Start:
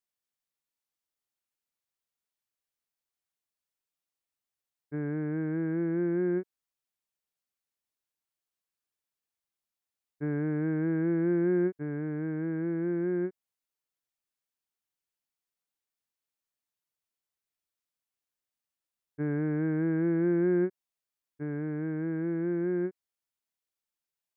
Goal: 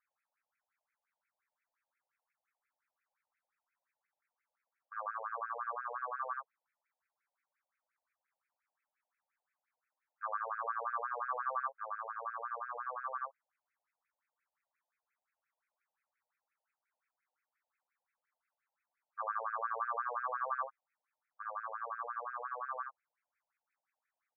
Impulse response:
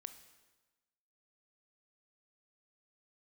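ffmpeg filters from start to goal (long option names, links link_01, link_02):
-af "asetrate=32097,aresample=44100,atempo=1.37395,equalizer=frequency=580:width_type=o:width=1.3:gain=-3.5,afftfilt=real='re*between(b*sr/1024,650*pow(1900/650,0.5+0.5*sin(2*PI*5.7*pts/sr))/1.41,650*pow(1900/650,0.5+0.5*sin(2*PI*5.7*pts/sr))*1.41)':imag='im*between(b*sr/1024,650*pow(1900/650,0.5+0.5*sin(2*PI*5.7*pts/sr))/1.41,650*pow(1900/650,0.5+0.5*sin(2*PI*5.7*pts/sr))*1.41)':win_size=1024:overlap=0.75,volume=14.5dB"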